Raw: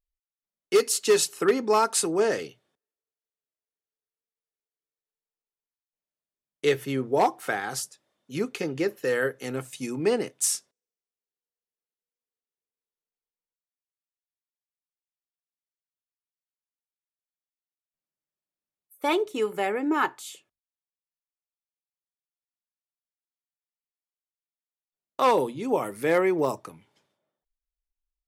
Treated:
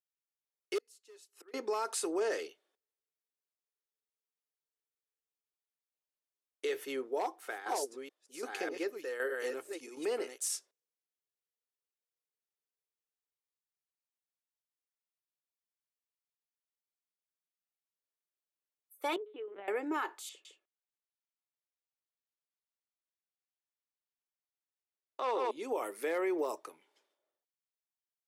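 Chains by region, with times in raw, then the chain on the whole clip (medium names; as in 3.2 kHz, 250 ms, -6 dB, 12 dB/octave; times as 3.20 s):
0.78–1.54 s: inverted gate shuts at -29 dBFS, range -30 dB + compression 12:1, threshold -45 dBFS
6.89–10.45 s: chunks repeated in reverse 600 ms, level -5.5 dB + tremolo saw down 1.3 Hz, depth 70%
19.16–19.68 s: compression 8:1, threshold -33 dBFS + distance through air 230 m + LPC vocoder at 8 kHz pitch kept
20.29–25.51 s: distance through air 81 m + delay 159 ms -3 dB
whole clip: Chebyshev high-pass 360 Hz, order 3; peak limiter -20.5 dBFS; trim -5 dB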